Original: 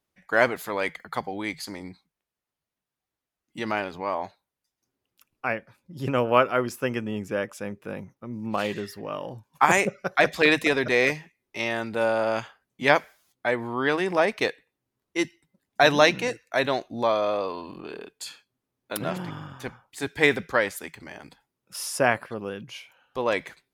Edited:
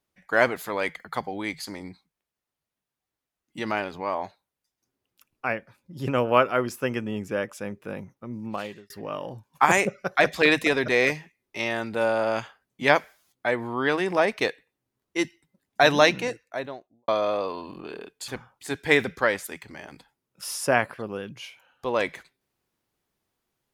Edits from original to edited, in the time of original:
8.32–8.9 fade out linear
16.06–17.08 studio fade out
18.28–19.6 cut

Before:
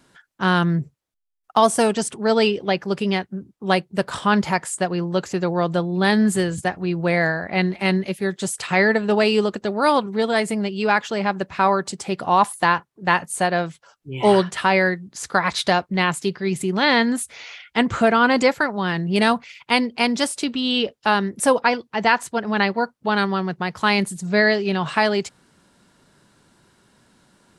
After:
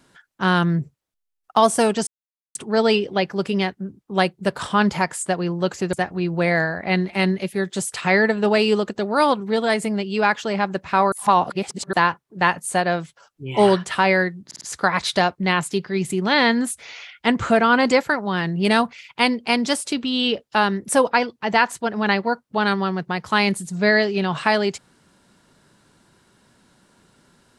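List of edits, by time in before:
2.07 insert silence 0.48 s
5.45–6.59 cut
11.78–12.59 reverse
15.12 stutter 0.05 s, 4 plays

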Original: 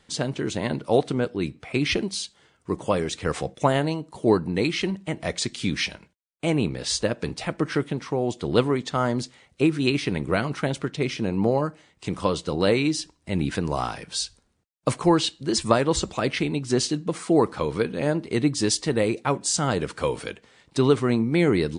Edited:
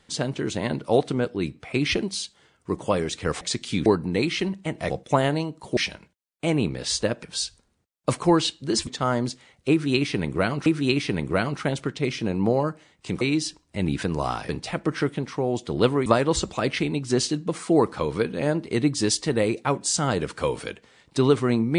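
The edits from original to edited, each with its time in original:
3.41–4.28 swap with 5.32–5.77
7.23–8.8 swap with 14.02–15.66
9.64–10.59 loop, 2 plays
12.19–12.74 cut

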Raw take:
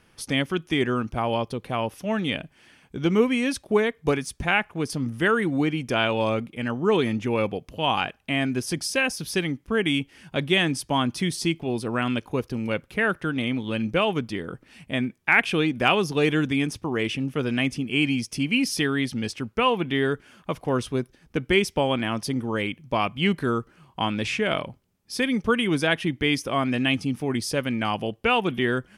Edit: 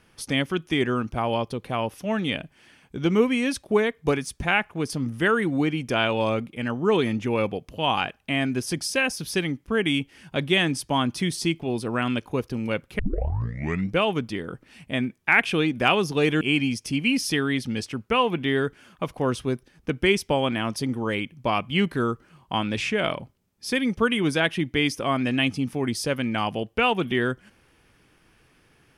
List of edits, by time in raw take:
12.99 tape start 0.97 s
16.41–17.88 cut

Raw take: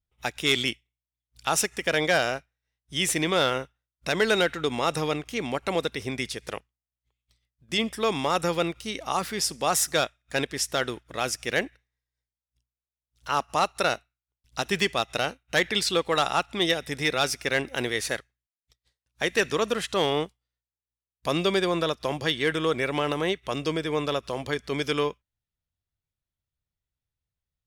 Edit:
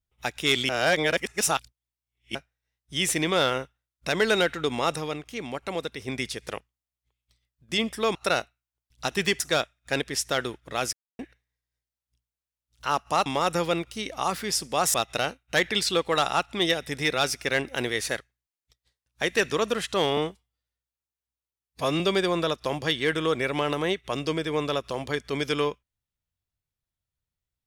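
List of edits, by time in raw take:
0.69–2.35 reverse
4.96–6.08 gain -4.5 dB
8.15–9.83 swap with 13.69–14.94
11.36–11.62 mute
20.17–21.39 stretch 1.5×

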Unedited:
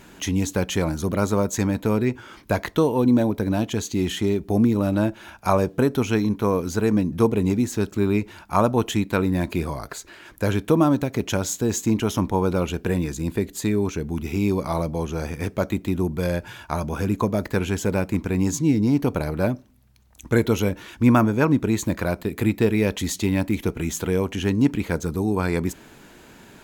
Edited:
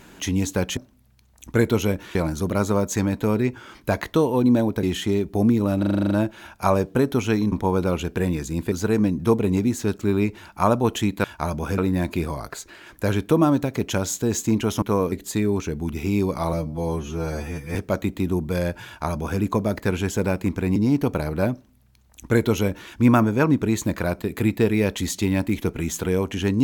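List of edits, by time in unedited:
3.45–3.98 cut
4.94 stutter 0.04 s, 9 plays
6.35–6.65 swap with 12.21–13.41
14.82–15.43 stretch 2×
16.54–17.08 copy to 9.17
18.44–18.77 cut
19.54–20.92 copy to 0.77

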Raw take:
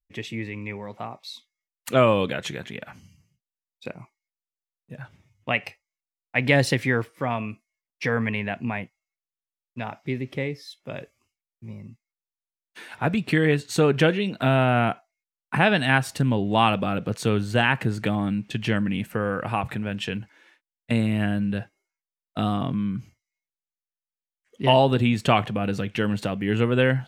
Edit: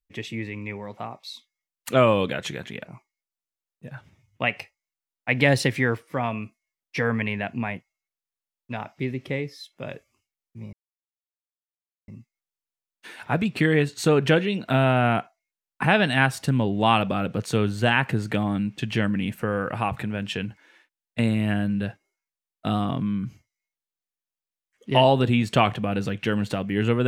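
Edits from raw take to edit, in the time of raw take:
2.85–3.92 cut
11.8 insert silence 1.35 s

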